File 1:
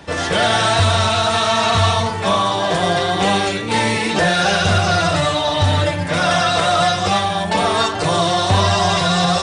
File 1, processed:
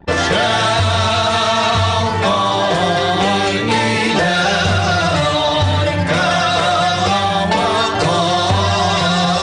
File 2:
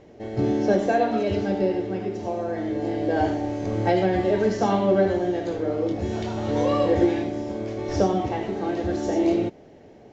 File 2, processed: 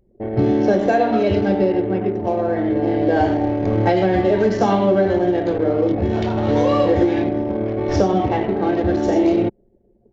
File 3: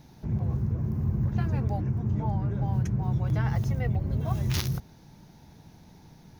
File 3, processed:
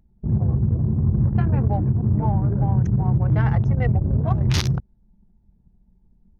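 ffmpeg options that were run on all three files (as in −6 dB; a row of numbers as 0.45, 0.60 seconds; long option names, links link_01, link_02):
-filter_complex "[0:a]asplit=2[link_01][link_02];[link_02]acontrast=50,volume=-2dB[link_03];[link_01][link_03]amix=inputs=2:normalize=0,anlmdn=251,acompressor=threshold=-12dB:ratio=6,lowpass=7300"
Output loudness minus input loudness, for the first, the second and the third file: +1.5, +6.0, +7.5 LU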